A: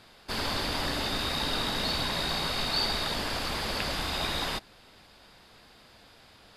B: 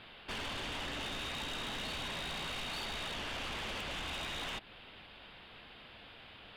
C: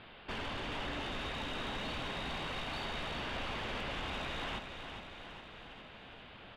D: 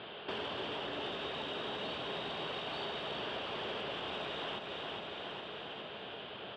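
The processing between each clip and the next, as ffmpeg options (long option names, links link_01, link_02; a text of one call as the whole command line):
ffmpeg -i in.wav -af "highshelf=frequency=4400:width_type=q:width=3:gain=-13.5,acompressor=threshold=-33dB:ratio=4,asoftclip=type=tanh:threshold=-36.5dB" out.wav
ffmpeg -i in.wav -filter_complex "[0:a]lowpass=frequency=2000:poles=1,asplit=2[link_01][link_02];[link_02]aecho=0:1:409|818|1227|1636|2045|2454|2863:0.398|0.235|0.139|0.0818|0.0482|0.0285|0.0168[link_03];[link_01][link_03]amix=inputs=2:normalize=0,volume=2.5dB" out.wav
ffmpeg -i in.wav -af "highshelf=frequency=5000:gain=-5.5,acompressor=threshold=-45dB:ratio=4,highpass=150,equalizer=frequency=250:width_type=q:width=4:gain=-4,equalizer=frequency=410:width_type=q:width=4:gain=8,equalizer=frequency=630:width_type=q:width=4:gain=4,equalizer=frequency=2100:width_type=q:width=4:gain=-5,equalizer=frequency=3200:width_type=q:width=4:gain=7,equalizer=frequency=6600:width_type=q:width=4:gain=-7,lowpass=frequency=8600:width=0.5412,lowpass=frequency=8600:width=1.3066,volume=6dB" out.wav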